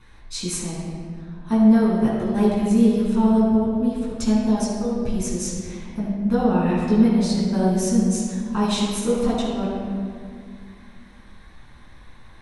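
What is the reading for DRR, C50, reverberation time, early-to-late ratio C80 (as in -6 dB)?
-7.5 dB, -1.0 dB, 2.1 s, 1.0 dB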